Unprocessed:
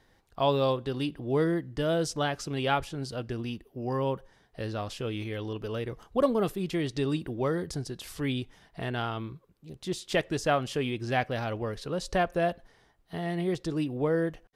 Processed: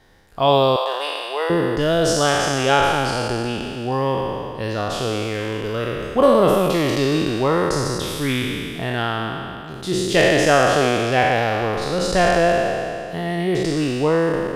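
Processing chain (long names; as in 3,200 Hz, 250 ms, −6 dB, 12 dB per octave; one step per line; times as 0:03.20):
peak hold with a decay on every bin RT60 2.43 s
0:00.76–0:01.50: inverse Chebyshev high-pass filter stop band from 160 Hz, stop band 60 dB
level +7 dB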